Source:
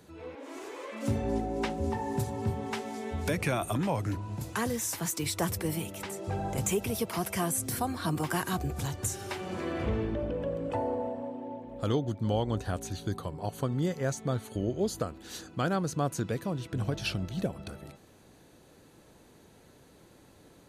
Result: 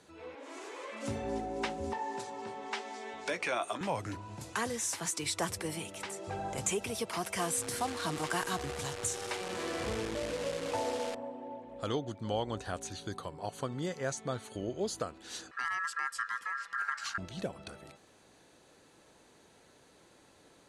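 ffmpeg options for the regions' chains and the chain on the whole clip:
-filter_complex "[0:a]asettb=1/sr,asplit=3[s0][s1][s2];[s0]atrim=end=1.934[s3];[s1]atrim=start=1.93:end=3.81,asetpts=PTS-STARTPTS,afade=t=in:d=0.004:c=qsin,afade=t=out:st=1.876:d=0.004:c=qsin,highpass=330,lowpass=7000,asplit=2[s4][s5];[s5]adelay=17,volume=0.266[s6];[s4][s6]amix=inputs=2:normalize=0,atrim=end_sample=82908[s7];[s2]atrim=start=3.806[s8];[s3][s7]acrossfade=d=0.004:c1=hsin:c2=qsin[s9];[s9][s8]acrossfade=d=0.004:c1=qsin:c2=hsin,asettb=1/sr,asplit=3[s10][s11][s12];[s10]atrim=end=7.384[s13];[s11]atrim=start=7.38:end=11.15,asetpts=PTS-STARTPTS,afade=t=in:d=0.004:c=qsin,afade=t=out:st=3.766:d=0.004:c=qsin,aeval=exprs='val(0)+0.0126*sin(2*PI*480*n/s)':c=same,acrusher=bits=7:dc=4:mix=0:aa=0.000001[s14];[s12]atrim=start=11.146[s15];[s13][s14]acrossfade=d=0.004:c1=hsin:c2=qsin[s16];[s16][s15]acrossfade=d=0.004:c1=qsin:c2=hsin,asettb=1/sr,asplit=3[s17][s18][s19];[s17]atrim=end=15.514[s20];[s18]atrim=start=15.51:end=17.18,asetpts=PTS-STARTPTS,afade=t=in:d=0.004:c=qsin,afade=t=out:st=1.666:d=0.004:c=qsin,acrossover=split=410|3000[s21][s22][s23];[s22]acompressor=threshold=0.00178:ratio=2:attack=3.2:release=140:knee=2.83:detection=peak[s24];[s21][s24][s23]amix=inputs=3:normalize=0,aeval=exprs='val(0)*sin(2*PI*1500*n/s)':c=same[s25];[s19]atrim=start=17.176[s26];[s20][s25]acrossfade=d=0.004:c1=hsin:c2=qsin[s27];[s27][s26]acrossfade=d=0.004:c1=qsin:c2=hsin,lowpass=f=10000:w=0.5412,lowpass=f=10000:w=1.3066,lowshelf=f=320:g=-11.5"

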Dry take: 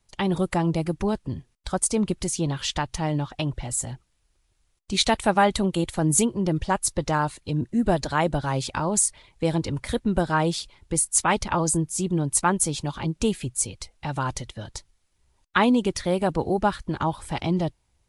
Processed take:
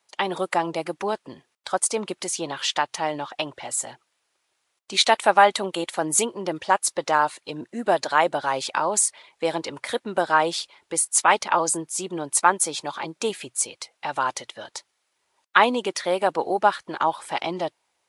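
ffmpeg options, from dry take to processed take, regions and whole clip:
-filter_complex "[0:a]asettb=1/sr,asplit=3[s0][s1][s2];[s0]atrim=end=12.394[s3];[s1]atrim=start=12.39:end=13.3,asetpts=PTS-STARTPTS,afade=t=in:d=0.004:c=qsin,afade=t=out:st=0.906:d=0.004:c=qsin,highpass=98,bandreject=f=2900:w=11[s4];[s2]atrim=start=13.296[s5];[s3][s4]acrossfade=d=0.004:c1=hsin:c2=qsin[s6];[s6][s5]acrossfade=d=0.004:c1=qsin:c2=hsin,highpass=560,highshelf=f=4400:g=-6.5,volume=2"

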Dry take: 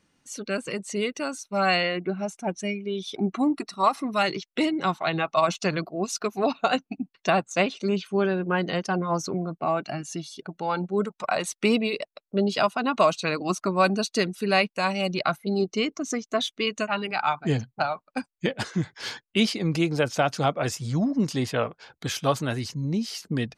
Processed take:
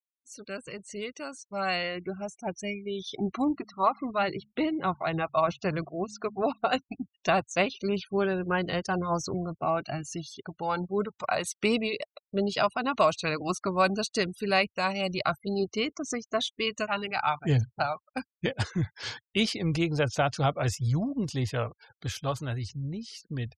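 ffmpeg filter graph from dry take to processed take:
-filter_complex "[0:a]asettb=1/sr,asplit=3[s0][s1][s2];[s0]atrim=end=3.484[s3];[s1]atrim=start=3.48:end=6.72,asetpts=PTS-STARTPTS,afade=t=in:d=0.004:c=qsin,afade=t=out:st=3.236:d=0.004:c=qsin,lowpass=f=1600:p=1,bandreject=f=70.11:t=h:w=4,bandreject=f=140.22:t=h:w=4,bandreject=f=210.33:t=h:w=4[s4];[s2]atrim=start=6.716[s5];[s3][s4]acrossfade=d=0.004:c1=hsin:c2=qsin[s6];[s6][s5]acrossfade=d=0.004:c1=qsin:c2=hsin,afftfilt=real='re*gte(hypot(re,im),0.00708)':imag='im*gte(hypot(re,im),0.00708)':win_size=1024:overlap=0.75,lowshelf=f=130:t=q:w=1.5:g=12,dynaudnorm=f=230:g=21:m=2.51,volume=0.376"

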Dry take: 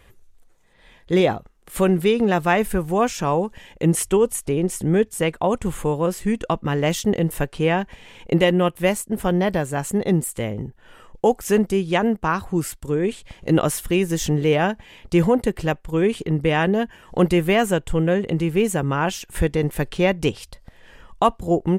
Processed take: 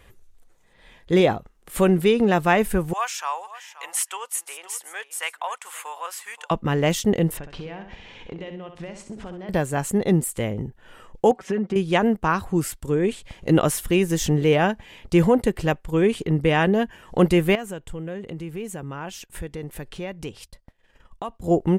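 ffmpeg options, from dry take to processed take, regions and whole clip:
-filter_complex "[0:a]asettb=1/sr,asplit=3[s0][s1][s2];[s0]atrim=end=2.934[s3];[s1]atrim=start=2.93:end=6.51,asetpts=PTS-STARTPTS,afade=t=in:d=0.004:c=qsin,afade=t=out:st=3.576:d=0.004:c=qsin,highpass=f=920:w=0.5412,highpass=f=920:w=1.3066,aecho=1:1:527:0.168,atrim=end_sample=157878[s4];[s2]atrim=start=6.506[s5];[s3][s4]acrossfade=d=0.004:c1=hsin:c2=qsin[s6];[s6][s5]acrossfade=d=0.004:c1=qsin:c2=hsin,asettb=1/sr,asplit=3[s7][s8][s9];[s7]atrim=end=7.374[s10];[s8]atrim=start=7.37:end=9.49,asetpts=PTS-STARTPTS,afade=t=in:d=0.004:c=qsin,afade=t=out:st=2.116:d=0.004:c=qsin,lowpass=f=5700:w=0.5412,lowpass=f=5700:w=1.3066,acompressor=threshold=0.0282:ratio=20:attack=3.2:release=140:knee=1:detection=peak,aecho=1:1:65|130|195|260:0.398|0.151|0.0575|0.0218,atrim=end_sample=93492[s11];[s9]atrim=start=9.486[s12];[s10][s11]acrossfade=d=0.004:c1=hsin:c2=qsin[s13];[s13][s12]acrossfade=d=0.004:c1=qsin:c2=hsin,asettb=1/sr,asplit=3[s14][s15][s16];[s14]atrim=end=11.314[s17];[s15]atrim=start=11.31:end=11.76,asetpts=PTS-STARTPTS,afade=t=in:d=0.004:c=qsin,afade=t=out:st=0.446:d=0.004:c=qsin,highpass=140,lowpass=2800,aecho=1:1:5.3:0.86,atrim=end_sample=19845,acompressor=threshold=0.0794:ratio=4:attack=3.2:release=140:knee=1:detection=peak[s18];[s16]atrim=start=11.756[s19];[s17][s18]acrossfade=d=0.004:c1=hsin:c2=qsin[s20];[s20][s19]acrossfade=d=0.004:c1=qsin:c2=hsin,asettb=1/sr,asplit=3[s21][s22][s23];[s21]atrim=end=17.554[s24];[s22]atrim=start=17.55:end=21.44,asetpts=PTS-STARTPTS,afade=t=in:d=0.004:c=qsin,afade=t=out:st=3.886:d=0.004:c=qsin,agate=range=0.0224:threshold=0.0141:ratio=3:release=100:detection=peak,acompressor=threshold=0.0112:ratio=2:attack=3.2:release=140:knee=1:detection=peak[s25];[s23]atrim=start=21.436[s26];[s24][s25]acrossfade=d=0.004:c1=hsin:c2=qsin[s27];[s27][s26]acrossfade=d=0.004:c1=qsin:c2=hsin"

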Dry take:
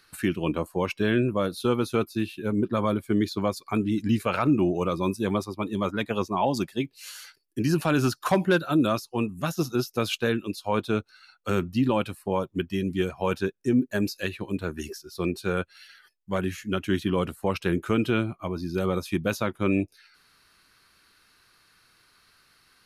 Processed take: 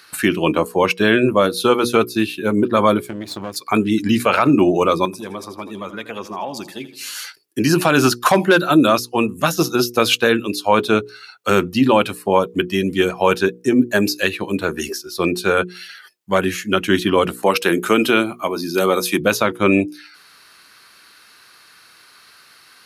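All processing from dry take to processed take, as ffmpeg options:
-filter_complex "[0:a]asettb=1/sr,asplit=3[s0][s1][s2];[s0]atrim=end=3.064[s3];[s1]atrim=start=3.06:end=3.56,asetpts=PTS-STARTPTS,afade=t=in:d=0.004:c=qsin,afade=t=out:st=0.496:d=0.004:c=qsin,aeval=exprs='if(lt(val(0),0),0.251*val(0),val(0))':c=same,equalizer=f=120:w=0.45:g=7,acompressor=threshold=0.02:ratio=4:attack=3.2:release=140:knee=1:detection=peak[s4];[s2]atrim=start=3.556[s5];[s3][s4]acrossfade=d=0.004:c1=hsin:c2=qsin[s6];[s6][s5]acrossfade=d=0.004:c1=qsin:c2=hsin,asettb=1/sr,asplit=3[s7][s8][s9];[s7]atrim=end=5.054[s10];[s8]atrim=start=5.05:end=7.17,asetpts=PTS-STARTPTS,afade=t=in:d=0.004:c=qsin,afade=t=out:st=2.116:d=0.004:c=qsin,acompressor=threshold=0.01:ratio=3:attack=3.2:release=140:knee=1:detection=peak,aecho=1:1:81|162|243|324:0.211|0.0972|0.0447|0.0206,atrim=end_sample=93492[s11];[s9]atrim=start=7.166[s12];[s10][s11]acrossfade=d=0.004:c1=hsin:c2=qsin[s13];[s13][s12]acrossfade=d=0.004:c1=qsin:c2=hsin,asettb=1/sr,asplit=3[s14][s15][s16];[s14]atrim=end=17.434[s17];[s15]atrim=start=17.43:end=19.2,asetpts=PTS-STARTPTS,afade=t=in:d=0.004:c=qsin,afade=t=out:st=1.766:d=0.004:c=qsin,highpass=190,highshelf=f=7100:g=9.5,acompressor=mode=upward:threshold=0.00708:ratio=2.5:attack=3.2:release=140:knee=2.83:detection=peak[s18];[s16]atrim=start=19.196[s19];[s17][s18]acrossfade=d=0.004:c1=hsin:c2=qsin[s20];[s20][s19]acrossfade=d=0.004:c1=qsin:c2=hsin,highpass=f=350:p=1,bandreject=f=60:t=h:w=6,bandreject=f=120:t=h:w=6,bandreject=f=180:t=h:w=6,bandreject=f=240:t=h:w=6,bandreject=f=300:t=h:w=6,bandreject=f=360:t=h:w=6,bandreject=f=420:t=h:w=6,bandreject=f=480:t=h:w=6,alimiter=level_in=5.31:limit=0.891:release=50:level=0:latency=1,volume=0.891"

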